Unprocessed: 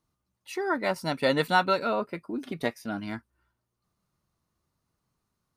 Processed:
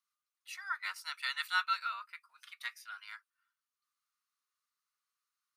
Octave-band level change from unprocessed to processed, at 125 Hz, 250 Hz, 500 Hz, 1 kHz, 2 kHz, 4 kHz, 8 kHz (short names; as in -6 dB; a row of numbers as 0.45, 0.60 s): under -40 dB, under -40 dB, under -40 dB, -10.0 dB, -5.0 dB, -4.5 dB, -5.0 dB